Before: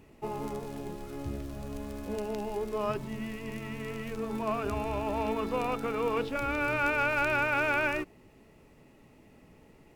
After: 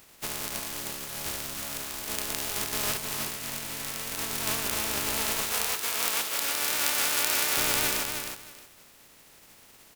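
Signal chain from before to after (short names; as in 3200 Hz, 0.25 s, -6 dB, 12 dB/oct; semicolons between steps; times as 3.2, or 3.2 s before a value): spectral contrast lowered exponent 0.19; 5.43–7.57 HPF 540 Hz 6 dB/oct; feedback echo 0.312 s, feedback 20%, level -6 dB; gain +1.5 dB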